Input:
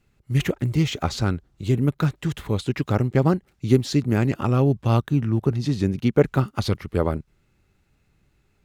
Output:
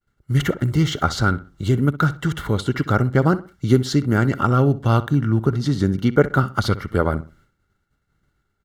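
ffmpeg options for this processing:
-filter_complex "[0:a]agate=range=0.0224:threshold=0.002:ratio=3:detection=peak,equalizer=f=1400:t=o:w=0.24:g=13,asplit=2[s0][s1];[s1]acompressor=threshold=0.0398:ratio=6,volume=1[s2];[s0][s2]amix=inputs=2:normalize=0,asuperstop=centerf=2500:order=12:qfactor=7.2,asplit=2[s3][s4];[s4]adelay=63,lowpass=f=3300:p=1,volume=0.168,asplit=2[s5][s6];[s6]adelay=63,lowpass=f=3300:p=1,volume=0.3,asplit=2[s7][s8];[s8]adelay=63,lowpass=f=3300:p=1,volume=0.3[s9];[s3][s5][s7][s9]amix=inputs=4:normalize=0"

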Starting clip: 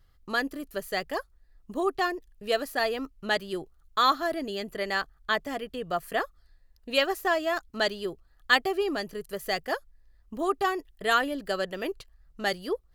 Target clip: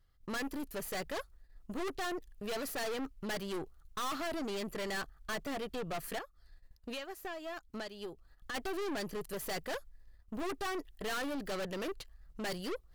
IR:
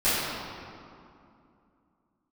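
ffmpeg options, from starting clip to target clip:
-filter_complex "[0:a]agate=range=0.316:threshold=0.00141:ratio=16:detection=peak,asplit=3[s0][s1][s2];[s0]afade=t=out:st=6.17:d=0.02[s3];[s1]acompressor=threshold=0.0112:ratio=16,afade=t=in:st=6.17:d=0.02,afade=t=out:st=8.54:d=0.02[s4];[s2]afade=t=in:st=8.54:d=0.02[s5];[s3][s4][s5]amix=inputs=3:normalize=0,aeval=exprs='(tanh(89.1*val(0)+0.45)-tanh(0.45))/89.1':c=same,volume=1.5"

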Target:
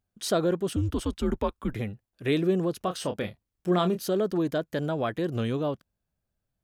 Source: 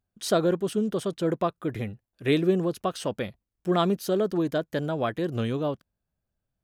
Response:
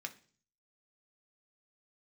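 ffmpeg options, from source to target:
-filter_complex "[0:a]asplit=2[s0][s1];[s1]alimiter=limit=0.0794:level=0:latency=1,volume=0.75[s2];[s0][s2]amix=inputs=2:normalize=0,asettb=1/sr,asplit=3[s3][s4][s5];[s3]atrim=end=0.764[s6];[s4]atrim=start=0.76:end=1.74,asetpts=PTS-STARTPTS,afade=t=in:d=0.004:c=qsin,afade=t=out:st=0.976:d=0.004:c=qsin,afreqshift=-120[s7];[s5]atrim=start=1.736[s8];[s6][s7]acrossfade=d=0.004:c1=hsin:c2=qsin[s9];[s9][s8]acrossfade=d=0.004:c1=qsin:c2=hsin,asettb=1/sr,asplit=3[s10][s11][s12];[s10]atrim=end=2.784[s13];[s11]atrim=start=2.78:end=4.08,asetpts=PTS-STARTPTS,afade=t=in:d=0.004:c=qsin,afade=t=out:st=1.296:d=0.004:c=qsin,asplit=2[s14][s15];[s15]adelay=28,volume=0.355[s16];[s14][s16]amix=inputs=2:normalize=0,atrim=end_sample=57330[s17];[s12]atrim=start=4.076[s18];[s13][s17]acrossfade=d=0.004:c1=hsin:c2=qsin[s19];[s19][s18]acrossfade=d=0.004:c1=qsin:c2=hsin,volume=0.596"

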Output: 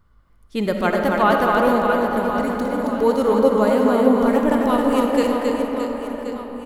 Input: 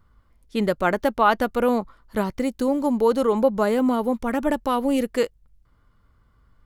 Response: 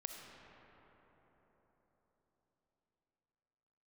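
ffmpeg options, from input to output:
-filter_complex "[0:a]asettb=1/sr,asplit=3[s0][s1][s2];[s0]atrim=end=2.184[s3];[s1]atrim=start=2.18:end=2.99,asetpts=PTS-STARTPTS,afade=t=in:d=0.004:c=qsin,afade=t=out:st=0.806:d=0.004:c=qsin,acompressor=threshold=0.0562:ratio=6[s4];[s2]atrim=start=2.986[s5];[s3][s4]acrossfade=d=0.004:c1=hsin:c2=qsin[s6];[s6][s5]acrossfade=d=0.004:c1=qsin:c2=hsin,aecho=1:1:270|621|1077|1670|2442:0.631|0.398|0.251|0.158|0.1[s7];[1:a]atrim=start_sample=2205[s8];[s7][s8]afir=irnorm=-1:irlink=0,volume=1.68"

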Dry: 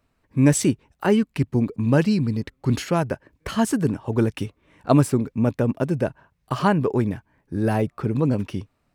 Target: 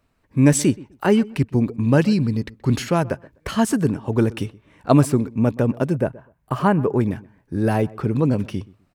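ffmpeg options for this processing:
-filter_complex "[0:a]asettb=1/sr,asplit=3[s0][s1][s2];[s0]atrim=end=5.934[s3];[s1]atrim=start=5.93:end=7.01,asetpts=PTS-STARTPTS,afade=t=in:d=0.004:c=qsin,afade=t=out:st=1.076:d=0.004:c=qsin,equalizer=f=4600:w=0.81:g=-10.5[s4];[s2]atrim=start=7.006[s5];[s3][s4]acrossfade=d=0.004:c1=hsin:c2=qsin[s6];[s6][s5]acrossfade=d=0.004:c1=qsin:c2=hsin,asplit=2[s7][s8];[s8]adelay=126,lowpass=f=1900:p=1,volume=0.0891,asplit=2[s9][s10];[s10]adelay=126,lowpass=f=1900:p=1,volume=0.22[s11];[s7][s9][s11]amix=inputs=3:normalize=0,volume=1.26"

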